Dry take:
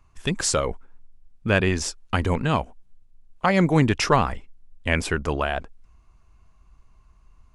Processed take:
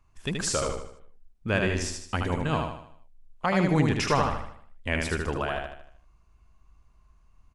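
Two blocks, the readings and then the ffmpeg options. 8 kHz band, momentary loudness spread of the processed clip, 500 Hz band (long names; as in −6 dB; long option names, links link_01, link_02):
−4.5 dB, 15 LU, −4.5 dB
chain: -af "aecho=1:1:77|154|231|308|385|462:0.631|0.278|0.122|0.0537|0.0236|0.0104,volume=-6dB"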